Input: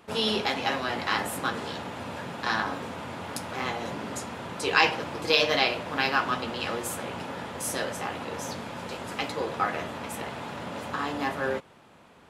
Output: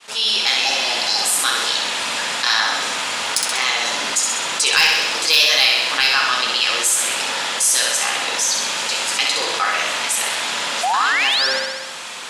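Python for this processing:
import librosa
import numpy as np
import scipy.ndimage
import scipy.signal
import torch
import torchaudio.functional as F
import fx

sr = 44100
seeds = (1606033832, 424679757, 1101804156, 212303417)

y = fx.fade_in_head(x, sr, length_s=0.63)
y = fx.weighting(y, sr, curve='ITU-R 468')
y = fx.spec_repair(y, sr, seeds[0], start_s=0.63, length_s=0.63, low_hz=880.0, high_hz=4000.0, source='both')
y = fx.high_shelf(y, sr, hz=3100.0, db=6.0)
y = fx.spec_paint(y, sr, seeds[1], shape='rise', start_s=10.83, length_s=0.64, low_hz=680.0, high_hz=5700.0, level_db=-23.0)
y = 10.0 ** (-4.5 / 20.0) * np.tanh(y / 10.0 ** (-4.5 / 20.0))
y = fx.room_flutter(y, sr, wall_m=11.0, rt60_s=0.72)
y = fx.env_flatten(y, sr, amount_pct=50)
y = F.gain(torch.from_numpy(y), -1.0).numpy()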